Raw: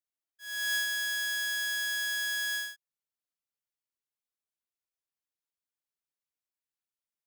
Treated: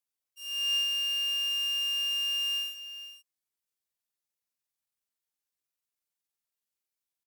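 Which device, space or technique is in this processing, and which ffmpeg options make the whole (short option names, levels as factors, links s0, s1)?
chipmunk voice: -filter_complex "[0:a]acrossover=split=2600[s0][s1];[s1]acompressor=threshold=0.00501:ratio=4:attack=1:release=60[s2];[s0][s2]amix=inputs=2:normalize=0,asetrate=74167,aresample=44100,atempo=0.594604,highshelf=f=3700:g=6,aecho=1:1:53|421|474:0.316|0.126|0.2,volume=1.19"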